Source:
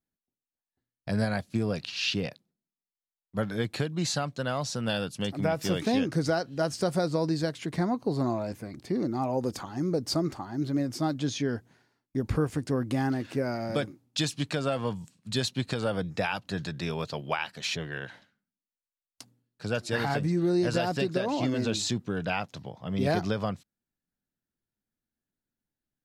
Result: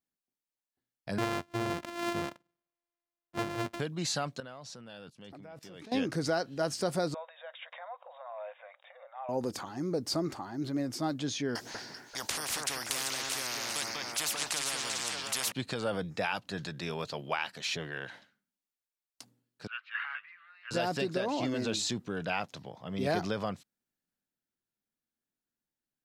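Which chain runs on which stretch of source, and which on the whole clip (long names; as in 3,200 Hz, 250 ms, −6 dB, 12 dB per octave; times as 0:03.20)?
0:01.18–0:03.80: samples sorted by size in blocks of 128 samples + low-pass filter 3,200 Hz 6 dB per octave
0:04.40–0:05.92: high-shelf EQ 6,400 Hz −9 dB + output level in coarse steps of 22 dB
0:07.14–0:09.29: downward compressor 10 to 1, threshold −30 dBFS + linear-phase brick-wall band-pass 500–3,800 Hz
0:11.55–0:15.52: parametric band 5,300 Hz +13 dB 0.82 octaves + delay that swaps between a low-pass and a high-pass 195 ms, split 2,200 Hz, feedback 51%, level −5 dB + every bin compressed towards the loudest bin 10 to 1
0:19.67–0:20.71: elliptic band-pass filter 1,200–2,900 Hz, stop band 60 dB + multiband upward and downward expander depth 40%
whole clip: low-shelf EQ 150 Hz −10.5 dB; transient designer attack −1 dB, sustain +3 dB; level −2 dB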